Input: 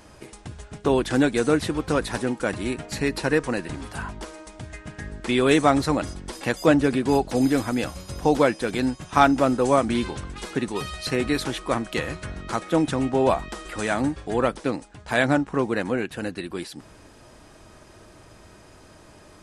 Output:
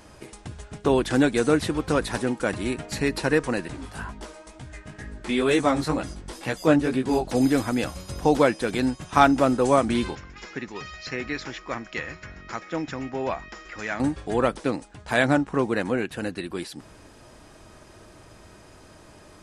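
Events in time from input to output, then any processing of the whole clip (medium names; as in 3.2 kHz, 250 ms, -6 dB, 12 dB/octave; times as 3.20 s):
3.68–7.25 s: chorus 2.1 Hz, delay 15 ms, depth 5.7 ms
10.15–14.00 s: rippled Chebyshev low-pass 7.2 kHz, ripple 9 dB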